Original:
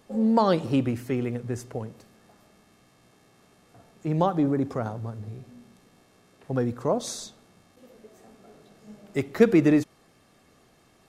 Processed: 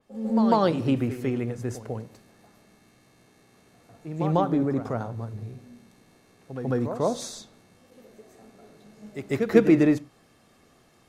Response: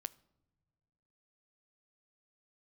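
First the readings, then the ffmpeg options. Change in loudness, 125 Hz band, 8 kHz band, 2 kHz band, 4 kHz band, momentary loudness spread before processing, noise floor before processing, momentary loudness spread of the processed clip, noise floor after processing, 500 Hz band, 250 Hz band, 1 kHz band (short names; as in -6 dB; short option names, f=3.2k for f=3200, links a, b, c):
+0.5 dB, +0.5 dB, -2.0 dB, 0.0 dB, -0.5 dB, 18 LU, -61 dBFS, 19 LU, -60 dBFS, +0.5 dB, +0.5 dB, +0.5 dB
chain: -filter_complex "[0:a]asplit=2[a][b];[1:a]atrim=start_sample=2205,afade=t=out:st=0.17:d=0.01,atrim=end_sample=7938,adelay=147[c];[b][c]afir=irnorm=-1:irlink=0,volume=12dB[d];[a][d]amix=inputs=2:normalize=0,adynamicequalizer=threshold=0.0141:dfrequency=4000:dqfactor=0.7:tfrequency=4000:tqfactor=0.7:attack=5:release=100:ratio=0.375:range=2:mode=cutabove:tftype=highshelf,volume=-9dB"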